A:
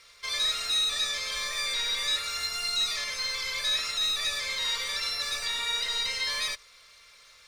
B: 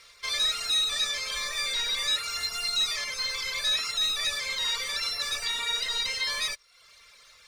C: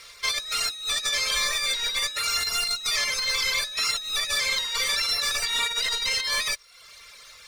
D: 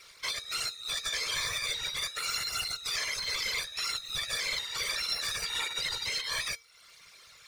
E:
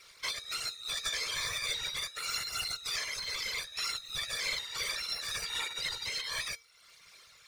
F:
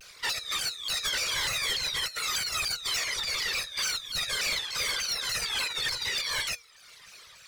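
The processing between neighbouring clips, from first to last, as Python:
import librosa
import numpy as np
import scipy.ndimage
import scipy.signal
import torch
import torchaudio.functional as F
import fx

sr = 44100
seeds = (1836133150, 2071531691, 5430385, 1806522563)

y1 = fx.dereverb_blind(x, sr, rt60_s=0.66)
y1 = y1 * 10.0 ** (2.0 / 20.0)
y2 = fx.over_compress(y1, sr, threshold_db=-31.0, ratio=-0.5)
y2 = fx.high_shelf(y2, sr, hz=10000.0, db=5.5)
y2 = y2 * 10.0 ** (4.5 / 20.0)
y3 = fx.whisperise(y2, sr, seeds[0])
y3 = fx.comb_fb(y3, sr, f0_hz=460.0, decay_s=0.31, harmonics='odd', damping=0.0, mix_pct=60)
y4 = fx.am_noise(y3, sr, seeds[1], hz=5.7, depth_pct=55)
y5 = np.clip(y4, -10.0 ** (-31.5 / 20.0), 10.0 ** (-31.5 / 20.0))
y5 = fx.vibrato_shape(y5, sr, shape='saw_down', rate_hz=3.4, depth_cents=250.0)
y5 = y5 * 10.0 ** (6.5 / 20.0)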